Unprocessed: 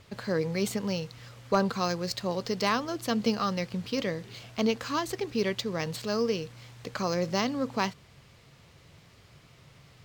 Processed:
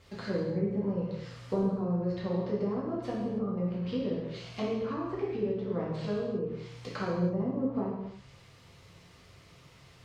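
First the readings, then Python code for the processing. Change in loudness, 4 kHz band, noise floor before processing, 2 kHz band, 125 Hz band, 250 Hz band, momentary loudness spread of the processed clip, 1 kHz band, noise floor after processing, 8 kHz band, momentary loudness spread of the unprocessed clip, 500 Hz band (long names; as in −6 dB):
−2.5 dB, −14.0 dB, −57 dBFS, −11.0 dB, +1.5 dB, −0.5 dB, 7 LU, −9.0 dB, −57 dBFS, below −15 dB, 7 LU, −2.0 dB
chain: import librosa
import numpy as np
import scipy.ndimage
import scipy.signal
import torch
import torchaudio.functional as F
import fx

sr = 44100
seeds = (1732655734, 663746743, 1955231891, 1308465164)

y = fx.env_lowpass_down(x, sr, base_hz=420.0, full_db=-25.0)
y = fx.rev_gated(y, sr, seeds[0], gate_ms=350, shape='falling', drr_db=-6.0)
y = y * librosa.db_to_amplitude(-6.5)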